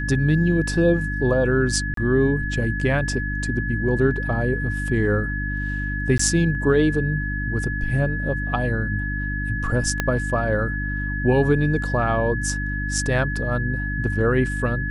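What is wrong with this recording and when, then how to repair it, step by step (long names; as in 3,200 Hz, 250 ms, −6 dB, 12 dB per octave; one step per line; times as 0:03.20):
mains hum 50 Hz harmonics 6 −27 dBFS
whistle 1,700 Hz −28 dBFS
0:01.94–0:01.97: drop-out 33 ms
0:06.18–0:06.19: drop-out 14 ms
0:10.00: click −7 dBFS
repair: click removal
notch filter 1,700 Hz, Q 30
hum removal 50 Hz, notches 6
repair the gap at 0:01.94, 33 ms
repair the gap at 0:06.18, 14 ms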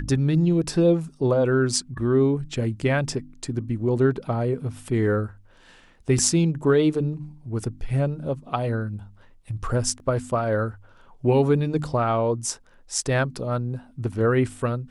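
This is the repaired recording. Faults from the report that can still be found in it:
0:10.00: click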